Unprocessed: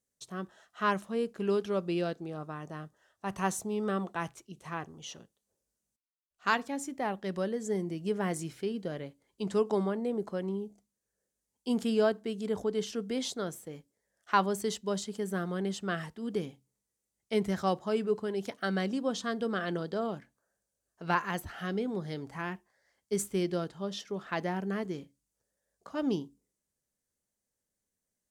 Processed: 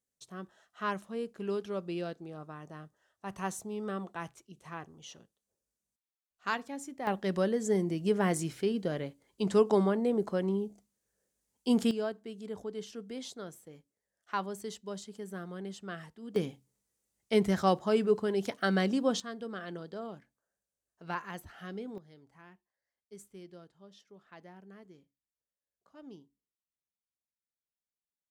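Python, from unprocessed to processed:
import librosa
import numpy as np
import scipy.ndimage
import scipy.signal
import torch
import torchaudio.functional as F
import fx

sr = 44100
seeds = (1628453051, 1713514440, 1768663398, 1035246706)

y = fx.gain(x, sr, db=fx.steps((0.0, -5.0), (7.07, 3.5), (11.91, -8.0), (16.36, 3.0), (19.2, -8.0), (21.98, -19.0)))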